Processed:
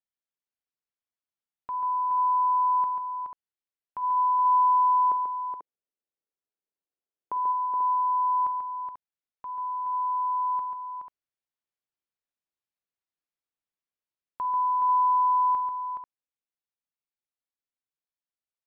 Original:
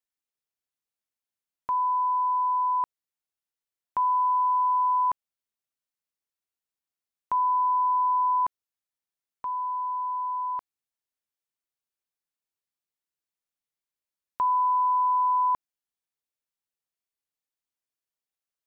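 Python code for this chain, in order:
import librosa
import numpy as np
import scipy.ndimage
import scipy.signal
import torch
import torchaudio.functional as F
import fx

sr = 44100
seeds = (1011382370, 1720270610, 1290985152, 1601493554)

y = fx.peak_eq(x, sr, hz=420.0, db=15.0, octaves=1.8, at=(4.02, 7.51), fade=0.02)
y = fx.rider(y, sr, range_db=4, speed_s=2.0)
y = fx.air_absorb(y, sr, metres=140.0)
y = fx.echo_multitap(y, sr, ms=(48, 139, 422, 490), db=(-14.5, -6.5, -6.5, -9.5))
y = F.gain(torch.from_numpy(y), -7.5).numpy()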